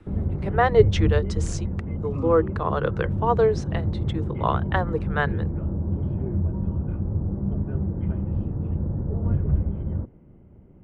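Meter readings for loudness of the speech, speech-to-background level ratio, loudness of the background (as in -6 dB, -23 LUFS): -24.5 LUFS, 2.5 dB, -27.0 LUFS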